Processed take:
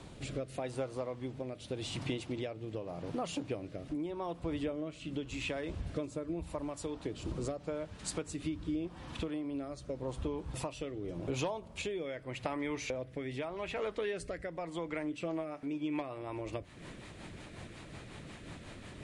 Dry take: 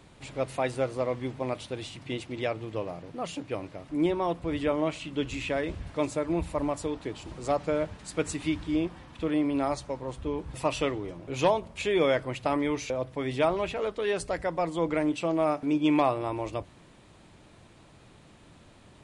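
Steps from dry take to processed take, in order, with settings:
parametric band 2,000 Hz −3.5 dB, from 0:12.06 +4.5 dB
downward compressor 12 to 1, threshold −40 dBFS, peak gain reduction 21.5 dB
rotating-speaker cabinet horn 0.85 Hz, later 5.5 Hz, at 0:14.79
level +7.5 dB

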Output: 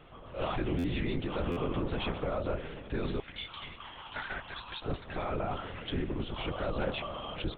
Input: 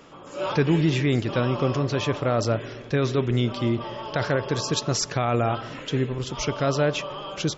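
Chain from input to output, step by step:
0:03.19–0:04.83: high-pass filter 1,300 Hz 12 dB per octave
brickwall limiter −19.5 dBFS, peak gain reduction 9 dB
linear-prediction vocoder at 8 kHz whisper
buffer that repeats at 0:00.78/0:01.51, samples 512, times 4
level −5 dB

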